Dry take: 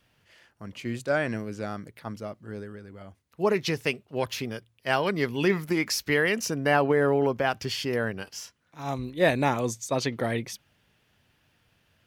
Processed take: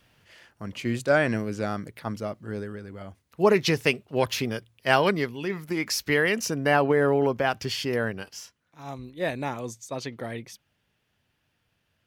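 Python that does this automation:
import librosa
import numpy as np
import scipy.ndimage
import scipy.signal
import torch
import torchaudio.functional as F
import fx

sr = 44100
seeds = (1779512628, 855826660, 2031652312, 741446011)

y = fx.gain(x, sr, db=fx.line((5.09, 4.5), (5.41, -8.0), (5.97, 1.0), (8.06, 1.0), (8.93, -6.5)))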